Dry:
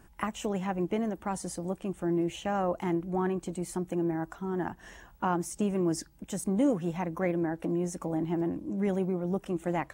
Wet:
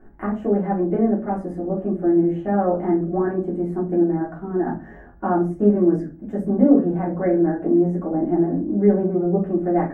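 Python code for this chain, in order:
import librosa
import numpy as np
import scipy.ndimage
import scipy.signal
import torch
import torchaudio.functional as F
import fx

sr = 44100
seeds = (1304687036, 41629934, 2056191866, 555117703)

y = fx.curve_eq(x, sr, hz=(130.0, 200.0, 700.0, 1000.0, 1700.0, 2600.0, 4000.0, 7600.0, 13000.0), db=(0, 7, 7, -5, 2, -18, -24, -29, -21))
y = fx.room_shoebox(y, sr, seeds[0], volume_m3=140.0, walls='furnished', distance_m=3.3)
y = y * 10.0 ** (-4.0 / 20.0)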